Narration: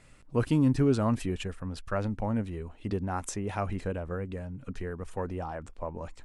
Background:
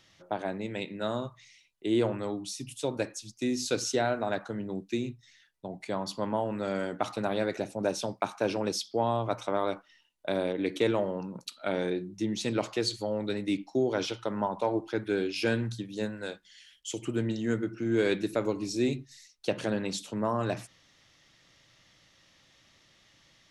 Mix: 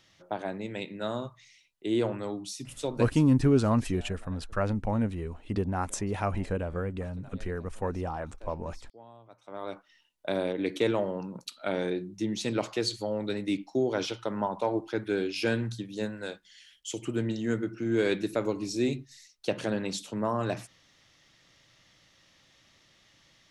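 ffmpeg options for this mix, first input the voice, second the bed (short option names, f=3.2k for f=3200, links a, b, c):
-filter_complex "[0:a]adelay=2650,volume=2dB[a];[1:a]volume=22.5dB,afade=t=out:st=2.97:d=0.35:silence=0.0749894,afade=t=in:st=9.42:d=0.63:silence=0.0668344[b];[a][b]amix=inputs=2:normalize=0"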